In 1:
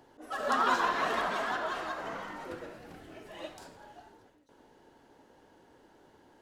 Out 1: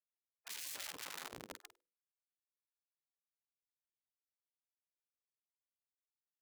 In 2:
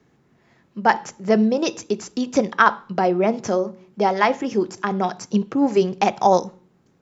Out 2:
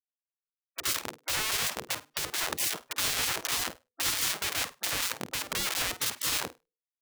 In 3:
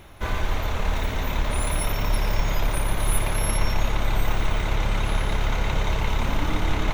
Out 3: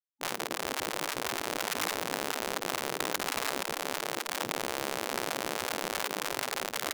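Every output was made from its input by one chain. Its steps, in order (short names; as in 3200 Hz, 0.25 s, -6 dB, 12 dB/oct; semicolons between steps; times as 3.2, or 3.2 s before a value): Schmitt trigger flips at -24.5 dBFS; high shelf 2500 Hz +4 dB; notches 50/100/150/200/250/300/350/400/450/500 Hz; flutter echo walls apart 8.7 m, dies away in 0.22 s; spectral gate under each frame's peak -20 dB weak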